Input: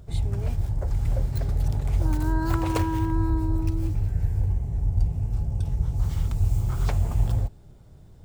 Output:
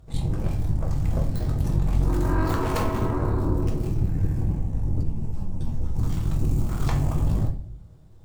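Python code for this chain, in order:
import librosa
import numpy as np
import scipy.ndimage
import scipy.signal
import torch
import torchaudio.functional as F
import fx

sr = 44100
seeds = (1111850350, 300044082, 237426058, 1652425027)

y = fx.cheby_harmonics(x, sr, harmonics=(4, 8), levels_db=(-10, -18), full_scale_db=-10.5)
y = fx.room_shoebox(y, sr, seeds[0], volume_m3=55.0, walls='mixed', distance_m=0.6)
y = fx.ensemble(y, sr, at=(5.03, 5.96))
y = y * librosa.db_to_amplitude(-5.5)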